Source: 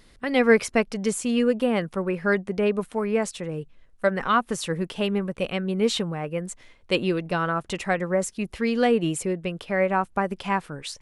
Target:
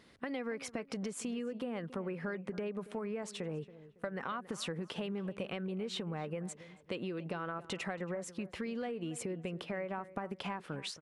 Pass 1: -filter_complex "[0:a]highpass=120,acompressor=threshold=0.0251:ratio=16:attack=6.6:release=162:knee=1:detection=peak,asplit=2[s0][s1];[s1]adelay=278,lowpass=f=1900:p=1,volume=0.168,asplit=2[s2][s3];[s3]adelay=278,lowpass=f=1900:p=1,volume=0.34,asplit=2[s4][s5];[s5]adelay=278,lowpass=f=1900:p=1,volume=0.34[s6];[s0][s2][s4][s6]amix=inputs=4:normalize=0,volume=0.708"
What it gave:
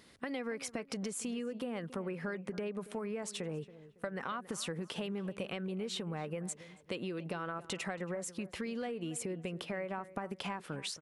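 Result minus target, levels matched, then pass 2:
8 kHz band +4.0 dB
-filter_complex "[0:a]highpass=120,highshelf=f=6000:g=-11,acompressor=threshold=0.0251:ratio=16:attack=6.6:release=162:knee=1:detection=peak,asplit=2[s0][s1];[s1]adelay=278,lowpass=f=1900:p=1,volume=0.168,asplit=2[s2][s3];[s3]adelay=278,lowpass=f=1900:p=1,volume=0.34,asplit=2[s4][s5];[s5]adelay=278,lowpass=f=1900:p=1,volume=0.34[s6];[s0][s2][s4][s6]amix=inputs=4:normalize=0,volume=0.708"

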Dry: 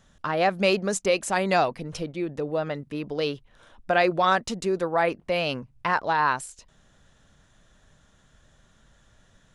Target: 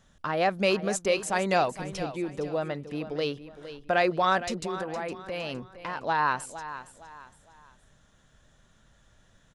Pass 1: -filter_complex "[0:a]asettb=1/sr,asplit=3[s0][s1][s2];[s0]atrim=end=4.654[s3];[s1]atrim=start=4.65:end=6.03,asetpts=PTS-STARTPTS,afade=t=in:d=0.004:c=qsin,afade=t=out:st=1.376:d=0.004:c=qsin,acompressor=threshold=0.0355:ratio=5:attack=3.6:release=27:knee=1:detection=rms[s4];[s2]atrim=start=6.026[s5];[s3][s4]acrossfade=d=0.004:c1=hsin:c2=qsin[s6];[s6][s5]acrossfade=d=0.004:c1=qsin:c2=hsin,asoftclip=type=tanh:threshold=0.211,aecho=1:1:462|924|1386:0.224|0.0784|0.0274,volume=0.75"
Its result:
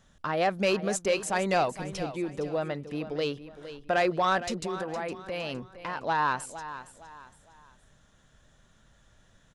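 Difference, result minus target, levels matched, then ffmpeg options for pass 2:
saturation: distortion +15 dB
-filter_complex "[0:a]asettb=1/sr,asplit=3[s0][s1][s2];[s0]atrim=end=4.654[s3];[s1]atrim=start=4.65:end=6.03,asetpts=PTS-STARTPTS,afade=t=in:d=0.004:c=qsin,afade=t=out:st=1.376:d=0.004:c=qsin,acompressor=threshold=0.0355:ratio=5:attack=3.6:release=27:knee=1:detection=rms[s4];[s2]atrim=start=6.026[s5];[s3][s4]acrossfade=d=0.004:c1=hsin:c2=qsin[s6];[s6][s5]acrossfade=d=0.004:c1=qsin:c2=hsin,asoftclip=type=tanh:threshold=0.596,aecho=1:1:462|924|1386:0.224|0.0784|0.0274,volume=0.75"

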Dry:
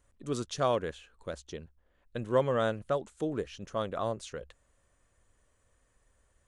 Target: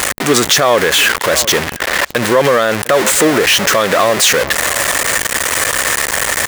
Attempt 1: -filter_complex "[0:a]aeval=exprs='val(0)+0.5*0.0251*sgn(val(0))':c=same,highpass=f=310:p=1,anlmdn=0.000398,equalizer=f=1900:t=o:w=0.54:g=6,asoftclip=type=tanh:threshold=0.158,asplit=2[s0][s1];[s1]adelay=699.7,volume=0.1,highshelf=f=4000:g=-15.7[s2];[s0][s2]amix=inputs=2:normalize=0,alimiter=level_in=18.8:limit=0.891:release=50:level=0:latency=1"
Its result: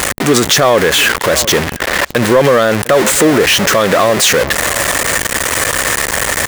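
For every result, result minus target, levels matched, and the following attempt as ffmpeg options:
saturation: distortion +15 dB; 250 Hz band +3.0 dB
-filter_complex "[0:a]aeval=exprs='val(0)+0.5*0.0251*sgn(val(0))':c=same,highpass=f=310:p=1,anlmdn=0.000398,equalizer=f=1900:t=o:w=0.54:g=6,asoftclip=type=tanh:threshold=0.355,asplit=2[s0][s1];[s1]adelay=699.7,volume=0.1,highshelf=f=4000:g=-15.7[s2];[s0][s2]amix=inputs=2:normalize=0,alimiter=level_in=18.8:limit=0.891:release=50:level=0:latency=1"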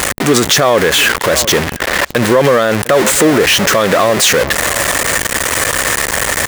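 250 Hz band +3.0 dB
-filter_complex "[0:a]aeval=exprs='val(0)+0.5*0.0251*sgn(val(0))':c=same,highpass=f=630:p=1,anlmdn=0.000398,equalizer=f=1900:t=o:w=0.54:g=6,asoftclip=type=tanh:threshold=0.355,asplit=2[s0][s1];[s1]adelay=699.7,volume=0.1,highshelf=f=4000:g=-15.7[s2];[s0][s2]amix=inputs=2:normalize=0,alimiter=level_in=18.8:limit=0.891:release=50:level=0:latency=1"

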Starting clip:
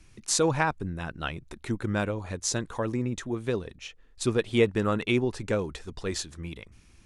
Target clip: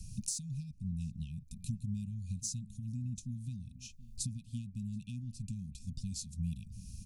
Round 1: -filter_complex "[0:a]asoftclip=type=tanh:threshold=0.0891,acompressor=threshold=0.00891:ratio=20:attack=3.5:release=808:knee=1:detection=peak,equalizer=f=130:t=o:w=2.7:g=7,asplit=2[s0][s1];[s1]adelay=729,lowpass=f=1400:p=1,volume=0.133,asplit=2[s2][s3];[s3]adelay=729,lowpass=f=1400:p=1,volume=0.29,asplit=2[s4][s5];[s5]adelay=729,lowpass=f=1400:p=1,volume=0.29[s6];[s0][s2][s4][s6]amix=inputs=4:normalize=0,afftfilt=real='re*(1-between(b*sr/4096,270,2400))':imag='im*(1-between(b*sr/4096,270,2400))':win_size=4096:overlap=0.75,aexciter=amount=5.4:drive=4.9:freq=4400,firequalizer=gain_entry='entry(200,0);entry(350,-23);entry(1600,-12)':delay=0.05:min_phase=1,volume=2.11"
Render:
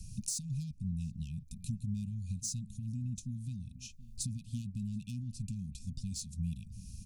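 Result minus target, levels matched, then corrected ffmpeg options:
saturation: distortion +12 dB
-filter_complex "[0:a]asoftclip=type=tanh:threshold=0.251,acompressor=threshold=0.00891:ratio=20:attack=3.5:release=808:knee=1:detection=peak,equalizer=f=130:t=o:w=2.7:g=7,asplit=2[s0][s1];[s1]adelay=729,lowpass=f=1400:p=1,volume=0.133,asplit=2[s2][s3];[s3]adelay=729,lowpass=f=1400:p=1,volume=0.29,asplit=2[s4][s5];[s5]adelay=729,lowpass=f=1400:p=1,volume=0.29[s6];[s0][s2][s4][s6]amix=inputs=4:normalize=0,afftfilt=real='re*(1-between(b*sr/4096,270,2400))':imag='im*(1-between(b*sr/4096,270,2400))':win_size=4096:overlap=0.75,aexciter=amount=5.4:drive=4.9:freq=4400,firequalizer=gain_entry='entry(200,0);entry(350,-23);entry(1600,-12)':delay=0.05:min_phase=1,volume=2.11"

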